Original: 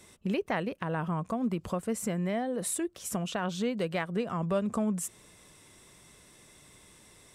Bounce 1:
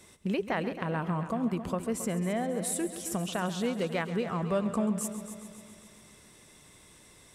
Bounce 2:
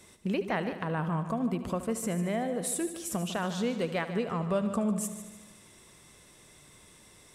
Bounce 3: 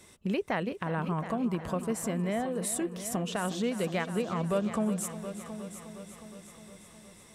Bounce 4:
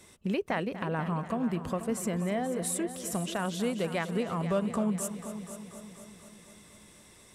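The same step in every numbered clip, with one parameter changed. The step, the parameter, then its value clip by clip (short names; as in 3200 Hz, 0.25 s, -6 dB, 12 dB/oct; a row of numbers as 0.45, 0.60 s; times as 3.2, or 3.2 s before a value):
multi-head echo, time: 135, 75, 361, 243 ms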